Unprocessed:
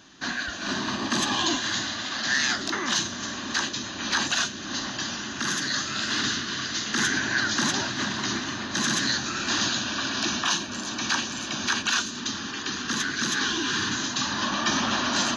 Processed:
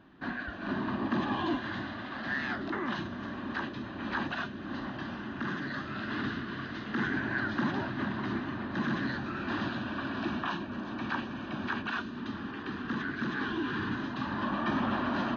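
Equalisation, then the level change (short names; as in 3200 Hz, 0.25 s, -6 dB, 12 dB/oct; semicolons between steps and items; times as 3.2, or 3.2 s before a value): air absorption 200 m; tape spacing loss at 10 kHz 38 dB; 0.0 dB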